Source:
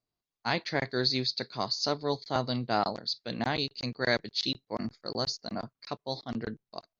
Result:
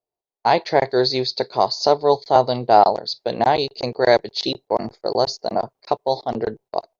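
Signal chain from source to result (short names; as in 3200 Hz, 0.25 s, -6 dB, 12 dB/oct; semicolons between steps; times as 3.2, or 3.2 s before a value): band shelf 580 Hz +15.5 dB; gate -45 dBFS, range -15 dB; dynamic EQ 450 Hz, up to -6 dB, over -28 dBFS, Q 0.81; gain +5.5 dB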